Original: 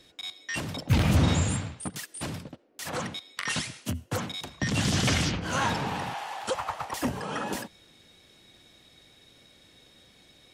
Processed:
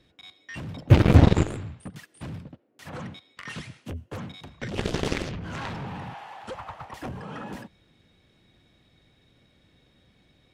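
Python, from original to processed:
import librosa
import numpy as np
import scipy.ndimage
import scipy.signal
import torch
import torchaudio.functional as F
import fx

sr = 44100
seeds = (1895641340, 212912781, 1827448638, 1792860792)

y = fx.bass_treble(x, sr, bass_db=8, treble_db=-11)
y = fx.cheby_harmonics(y, sr, harmonics=(3, 7), levels_db=(-17, -17), full_scale_db=-4.0)
y = F.gain(torch.from_numpy(y), 2.5).numpy()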